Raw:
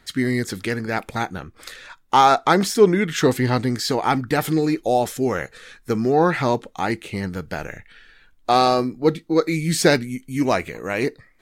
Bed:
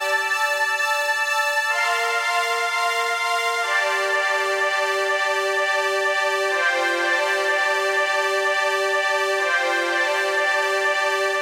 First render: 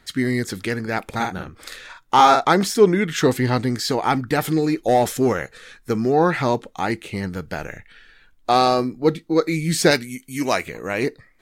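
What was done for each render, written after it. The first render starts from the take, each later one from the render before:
0:01.06–0:02.45: double-tracking delay 48 ms −4 dB
0:04.88–0:05.33: leveller curve on the samples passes 1
0:09.91–0:10.66: spectral tilt +2 dB per octave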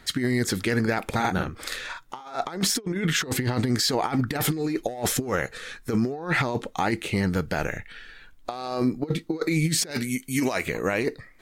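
compressor whose output falls as the input rises −23 dBFS, ratio −0.5
brickwall limiter −13.5 dBFS, peak gain reduction 7.5 dB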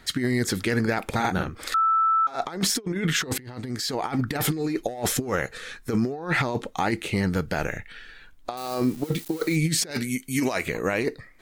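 0:01.74–0:02.27: beep over 1,320 Hz −17.5 dBFS
0:03.38–0:04.32: fade in, from −21 dB
0:08.57–0:09.56: spike at every zero crossing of −29.5 dBFS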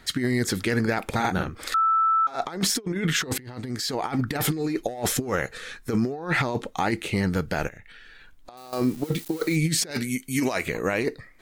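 0:07.68–0:08.73: downward compressor 3 to 1, threshold −44 dBFS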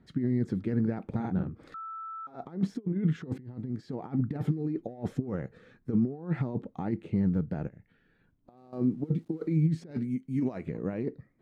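resonant band-pass 170 Hz, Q 1.2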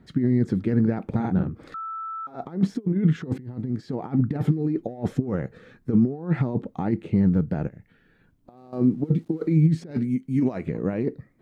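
level +7 dB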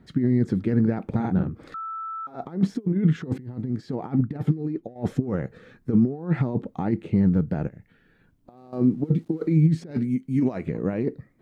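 0:04.21–0:04.96: expander for the loud parts, over −34 dBFS

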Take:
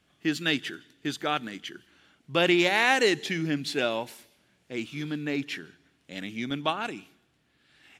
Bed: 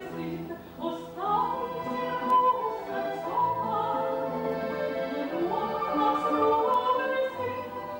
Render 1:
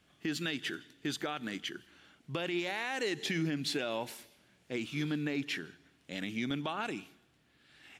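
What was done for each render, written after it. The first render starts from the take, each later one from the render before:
downward compressor, threshold −27 dBFS, peak gain reduction 10.5 dB
brickwall limiter −24 dBFS, peak gain reduction 7.5 dB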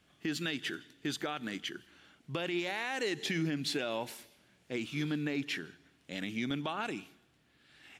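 no processing that can be heard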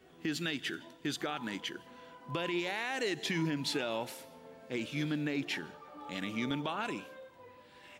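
mix in bed −23 dB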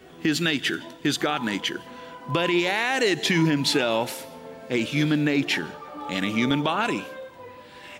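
level +12 dB

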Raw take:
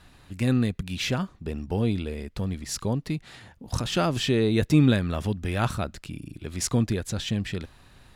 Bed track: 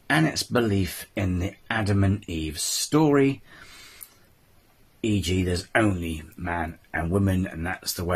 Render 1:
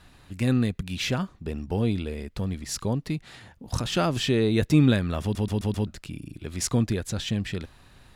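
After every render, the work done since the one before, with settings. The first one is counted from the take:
0:05.22: stutter in place 0.13 s, 5 plays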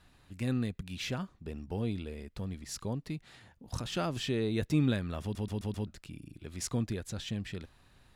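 level −9 dB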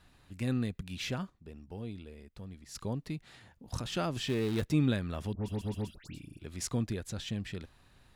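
0:01.30–0:02.75: clip gain −7.5 dB
0:04.28–0:04.70: gap after every zero crossing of 0.19 ms
0:05.33–0:06.39: all-pass dispersion highs, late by 116 ms, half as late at 1,900 Hz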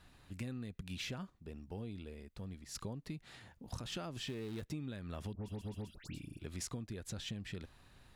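downward compressor 12 to 1, threshold −39 dBFS, peak gain reduction 17 dB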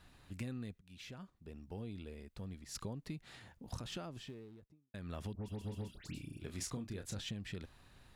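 0:00.79–0:02.19: fade in equal-power, from −21.5 dB
0:03.67–0:04.94: fade out and dull
0:05.58–0:07.21: double-tracking delay 30 ms −8 dB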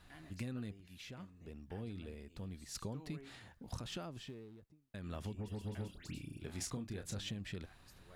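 mix in bed track −36 dB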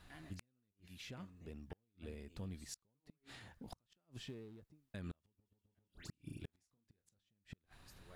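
gate with flip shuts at −36 dBFS, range −40 dB

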